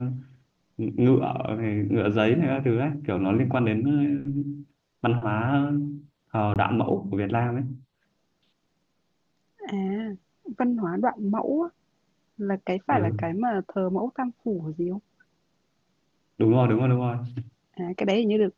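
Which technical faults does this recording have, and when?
6.54–6.56 gap 18 ms

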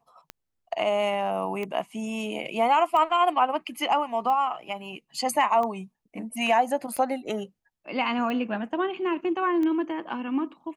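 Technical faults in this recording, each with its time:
tick 45 rpm -20 dBFS

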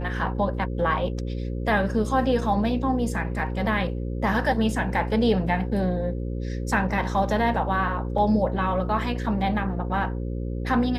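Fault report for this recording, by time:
buzz 60 Hz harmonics 9 -29 dBFS

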